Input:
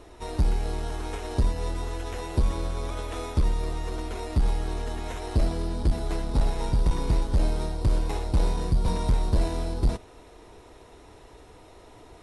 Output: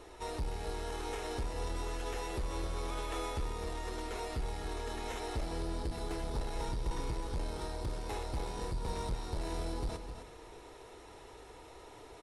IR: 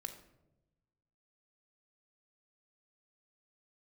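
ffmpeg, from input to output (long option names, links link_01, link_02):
-filter_complex "[0:a]lowshelf=frequency=300:gain=-7.5,acompressor=threshold=-30dB:ratio=6,asoftclip=type=tanh:threshold=-30.5dB,aecho=1:1:261:0.335,asplit=2[link_01][link_02];[1:a]atrim=start_sample=2205[link_03];[link_02][link_03]afir=irnorm=-1:irlink=0,volume=1dB[link_04];[link_01][link_04]amix=inputs=2:normalize=0,volume=-5.5dB"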